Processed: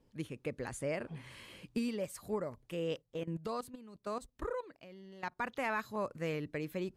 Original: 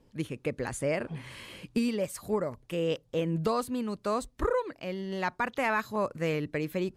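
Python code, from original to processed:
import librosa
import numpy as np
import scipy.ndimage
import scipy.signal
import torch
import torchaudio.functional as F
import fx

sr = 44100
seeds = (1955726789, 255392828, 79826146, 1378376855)

y = fx.level_steps(x, sr, step_db=15, at=(3.01, 5.37), fade=0.02)
y = y * 10.0 ** (-7.0 / 20.0)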